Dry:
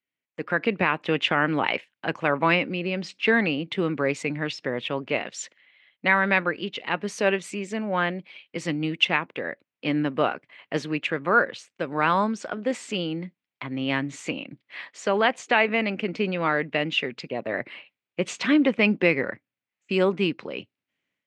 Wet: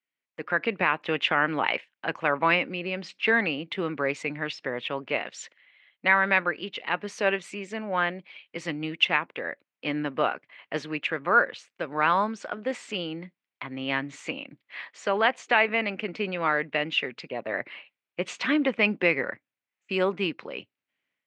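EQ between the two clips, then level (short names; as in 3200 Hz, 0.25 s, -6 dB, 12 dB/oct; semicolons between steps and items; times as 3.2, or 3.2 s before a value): LPF 2800 Hz 6 dB/oct; low shelf 490 Hz -10 dB; +2.0 dB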